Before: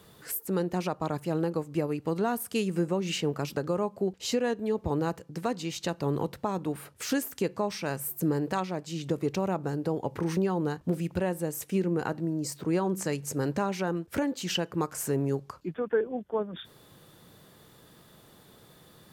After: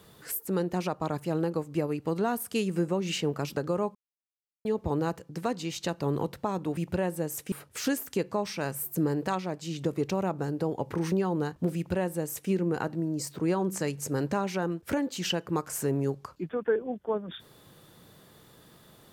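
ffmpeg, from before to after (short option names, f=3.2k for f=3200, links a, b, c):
-filter_complex "[0:a]asplit=5[a][b][c][d][e];[a]atrim=end=3.95,asetpts=PTS-STARTPTS,afade=t=out:st=3.946:d=0.004:c=hsin[f];[b]atrim=start=3.95:end=4.65,asetpts=PTS-STARTPTS,volume=0[g];[c]atrim=start=4.65:end=6.772,asetpts=PTS-STARTPTS,afade=t=in:d=0.004:c=hsin[h];[d]atrim=start=10.998:end=11.752[i];[e]atrim=start=6.768[j];[f][g][h]concat=n=3:v=0:a=1[k];[k][i]acrossfade=d=0.004:c1=hsin:c2=hsin[l];[l][j]acrossfade=d=0.004:c1=hsin:c2=hsin"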